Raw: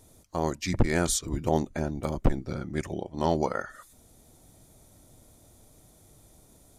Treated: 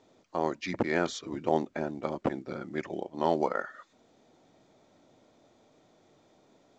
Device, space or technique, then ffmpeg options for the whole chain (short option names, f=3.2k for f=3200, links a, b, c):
telephone: -af "highpass=260,lowpass=3.3k" -ar 16000 -c:a pcm_mulaw